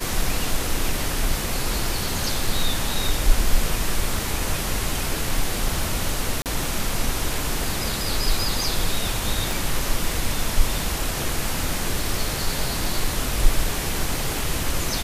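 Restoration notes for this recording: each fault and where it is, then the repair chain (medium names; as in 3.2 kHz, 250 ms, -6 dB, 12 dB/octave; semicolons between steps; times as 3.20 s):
6.42–6.46 s: dropout 38 ms
9.51 s: pop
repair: de-click; interpolate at 6.42 s, 38 ms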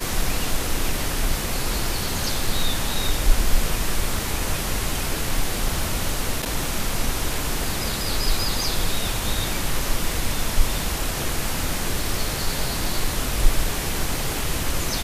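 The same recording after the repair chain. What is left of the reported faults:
nothing left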